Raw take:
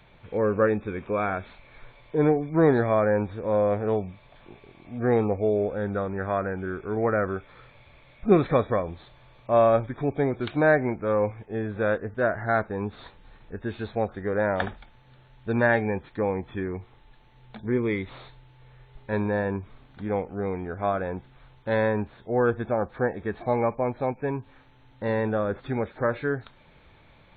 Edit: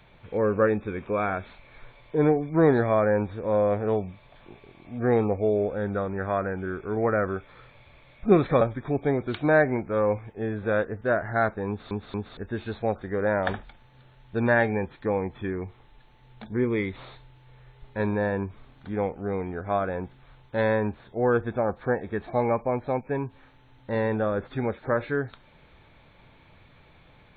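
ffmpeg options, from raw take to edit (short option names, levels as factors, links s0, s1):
-filter_complex "[0:a]asplit=5[s0][s1][s2][s3][s4];[s0]atrim=end=8.612[s5];[s1]atrim=start=9.738:end=13.042[s6];[s2]atrim=start=12.808:end=13.042[s7];[s3]atrim=start=12.808:end=13.042[s8];[s4]atrim=start=13.498[s9];[s5][s6]acrossfade=d=0.004:c1=hsin:c2=hsin[s10];[s10][s7]acrossfade=d=0.004:c1=hsin:c2=hsin[s11];[s11][s8]acrossfade=d=0.004:c1=hsin:c2=hsin[s12];[s12][s9]acrossfade=d=0.004:c1=hsin:c2=hsin"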